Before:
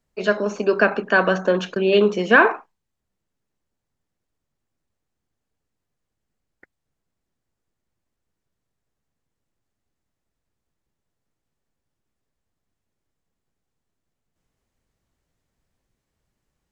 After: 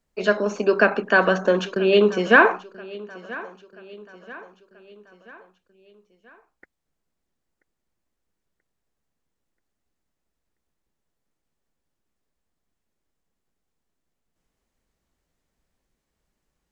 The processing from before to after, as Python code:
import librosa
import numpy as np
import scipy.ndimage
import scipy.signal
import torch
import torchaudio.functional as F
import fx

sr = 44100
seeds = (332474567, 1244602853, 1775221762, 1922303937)

y = fx.peak_eq(x, sr, hz=110.0, db=-10.0, octaves=0.54)
y = fx.echo_feedback(y, sr, ms=983, feedback_pct=49, wet_db=-20)